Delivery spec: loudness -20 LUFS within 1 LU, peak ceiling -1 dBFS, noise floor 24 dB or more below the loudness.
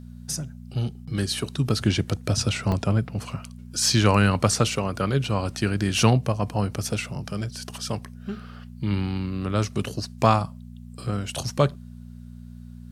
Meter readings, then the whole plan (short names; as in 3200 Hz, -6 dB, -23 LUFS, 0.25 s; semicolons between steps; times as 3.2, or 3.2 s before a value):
dropouts 1; longest dropout 1.3 ms; hum 60 Hz; harmonics up to 240 Hz; hum level -40 dBFS; loudness -25.0 LUFS; peak -4.5 dBFS; loudness target -20.0 LUFS
-> interpolate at 2.72, 1.3 ms; de-hum 60 Hz, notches 4; gain +5 dB; limiter -1 dBFS